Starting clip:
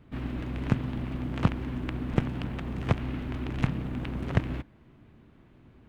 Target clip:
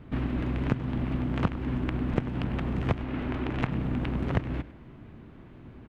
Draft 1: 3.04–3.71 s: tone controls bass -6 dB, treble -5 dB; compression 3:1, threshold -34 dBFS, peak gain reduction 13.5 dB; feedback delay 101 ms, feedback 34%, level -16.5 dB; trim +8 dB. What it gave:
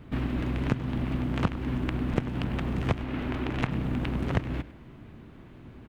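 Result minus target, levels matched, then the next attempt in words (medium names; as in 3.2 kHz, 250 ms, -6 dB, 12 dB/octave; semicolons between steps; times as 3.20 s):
8 kHz band +7.0 dB
3.04–3.71 s: tone controls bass -6 dB, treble -5 dB; compression 3:1, threshold -34 dBFS, peak gain reduction 13.5 dB; treble shelf 4.6 kHz -10 dB; feedback delay 101 ms, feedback 34%, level -16.5 dB; trim +8 dB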